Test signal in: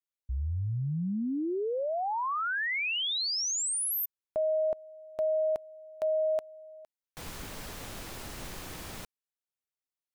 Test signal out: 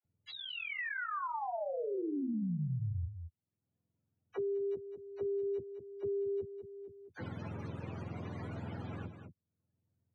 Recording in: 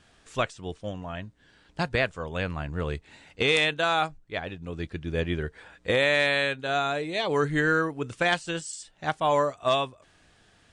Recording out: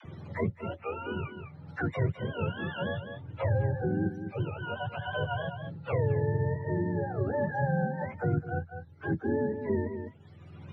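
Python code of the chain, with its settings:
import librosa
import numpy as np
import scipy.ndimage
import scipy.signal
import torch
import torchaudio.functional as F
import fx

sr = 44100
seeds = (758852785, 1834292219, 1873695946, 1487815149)

p1 = fx.octave_mirror(x, sr, pivot_hz=500.0)
p2 = scipy.signal.sosfilt(scipy.signal.butter(2, 2800.0, 'lowpass', fs=sr, output='sos'), p1)
p3 = fx.dispersion(p2, sr, late='lows', ms=48.0, hz=470.0)
p4 = p3 + fx.echo_single(p3, sr, ms=204, db=-11.5, dry=0)
p5 = fx.band_squash(p4, sr, depth_pct=70)
y = p5 * 10.0 ** (-4.5 / 20.0)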